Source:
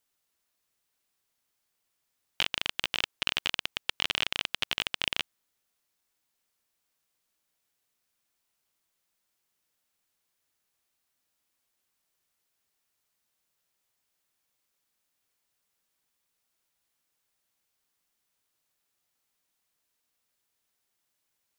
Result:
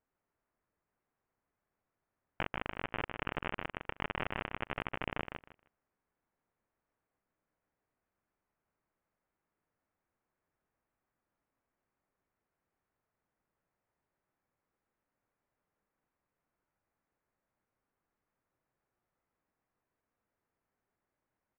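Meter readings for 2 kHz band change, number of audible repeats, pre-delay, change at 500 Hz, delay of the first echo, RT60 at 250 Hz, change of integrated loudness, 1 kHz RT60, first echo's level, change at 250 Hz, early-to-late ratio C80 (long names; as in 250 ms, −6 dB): −7.0 dB, 2, no reverb audible, +3.5 dB, 155 ms, no reverb audible, −9.0 dB, no reverb audible, −5.5 dB, +4.5 dB, no reverb audible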